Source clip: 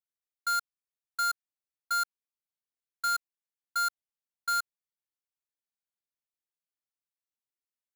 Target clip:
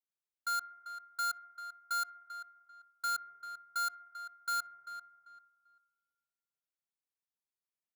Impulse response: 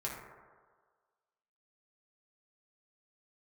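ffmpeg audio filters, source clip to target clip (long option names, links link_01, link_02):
-filter_complex "[0:a]highpass=100,asplit=2[link_01][link_02];[link_02]adelay=392,lowpass=frequency=2700:poles=1,volume=-10dB,asplit=2[link_03][link_04];[link_04]adelay=392,lowpass=frequency=2700:poles=1,volume=0.26,asplit=2[link_05][link_06];[link_06]adelay=392,lowpass=frequency=2700:poles=1,volume=0.26[link_07];[link_01][link_03][link_05][link_07]amix=inputs=4:normalize=0,asplit=2[link_08][link_09];[1:a]atrim=start_sample=2205,lowpass=2000[link_10];[link_09][link_10]afir=irnorm=-1:irlink=0,volume=-13dB[link_11];[link_08][link_11]amix=inputs=2:normalize=0,volume=-6dB"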